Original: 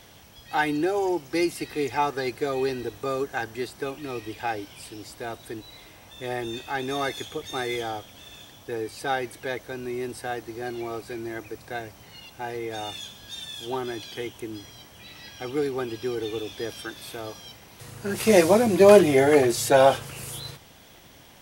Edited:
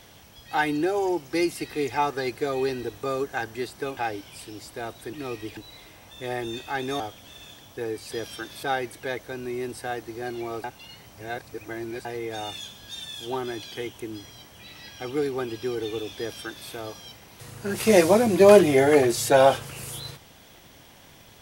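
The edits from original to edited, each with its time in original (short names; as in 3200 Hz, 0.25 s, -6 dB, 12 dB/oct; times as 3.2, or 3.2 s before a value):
3.97–4.41 move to 5.57
7–7.91 cut
11.04–12.45 reverse
16.58–17.09 copy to 9.03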